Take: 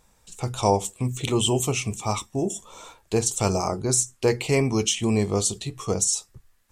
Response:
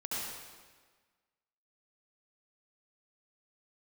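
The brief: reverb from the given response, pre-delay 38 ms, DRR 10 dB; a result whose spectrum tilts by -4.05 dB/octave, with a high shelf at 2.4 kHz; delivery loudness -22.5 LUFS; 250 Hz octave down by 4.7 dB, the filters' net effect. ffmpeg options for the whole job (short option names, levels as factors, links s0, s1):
-filter_complex "[0:a]equalizer=f=250:t=o:g=-6.5,highshelf=f=2400:g=-3.5,asplit=2[s0][s1];[1:a]atrim=start_sample=2205,adelay=38[s2];[s1][s2]afir=irnorm=-1:irlink=0,volume=0.2[s3];[s0][s3]amix=inputs=2:normalize=0,volume=1.58"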